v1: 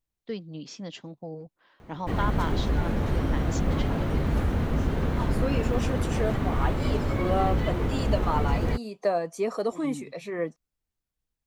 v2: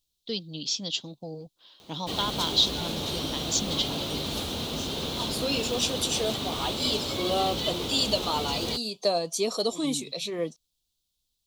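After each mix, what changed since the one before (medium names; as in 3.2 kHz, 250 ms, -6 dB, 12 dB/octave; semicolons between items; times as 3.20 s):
background: add high-pass 390 Hz 6 dB/octave; master: add resonant high shelf 2.6 kHz +12 dB, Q 3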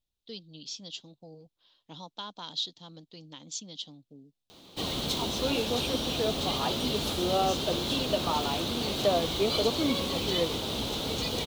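first voice -10.5 dB; second voice: add low-pass 2.6 kHz 24 dB/octave; background: entry +2.70 s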